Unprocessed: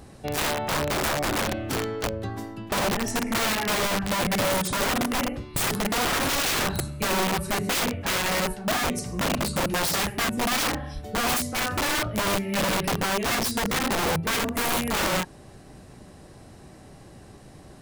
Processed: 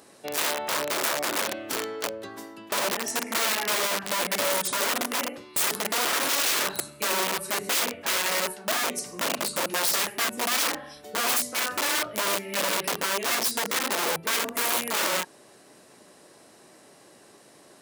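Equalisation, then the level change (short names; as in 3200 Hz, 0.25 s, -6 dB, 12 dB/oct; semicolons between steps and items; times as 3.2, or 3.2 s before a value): HPF 360 Hz 12 dB/oct; high shelf 4700 Hz +5 dB; notch 770 Hz, Q 12; -1.5 dB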